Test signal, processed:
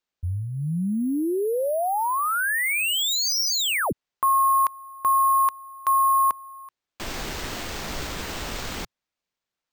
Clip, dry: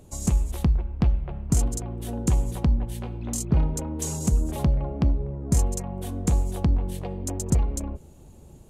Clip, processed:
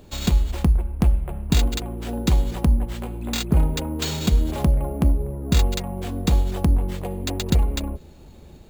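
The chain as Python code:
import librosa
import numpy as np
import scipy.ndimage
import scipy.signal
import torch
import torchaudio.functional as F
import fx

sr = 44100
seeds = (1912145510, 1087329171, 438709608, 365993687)

y = fx.peak_eq(x, sr, hz=120.0, db=-7.0, octaves=0.46)
y = np.repeat(y[::4], 4)[:len(y)]
y = y * librosa.db_to_amplitude(4.0)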